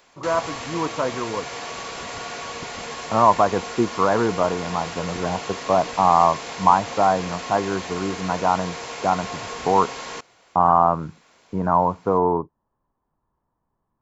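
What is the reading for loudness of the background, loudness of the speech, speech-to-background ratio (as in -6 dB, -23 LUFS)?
-32.0 LUFS, -21.5 LUFS, 10.5 dB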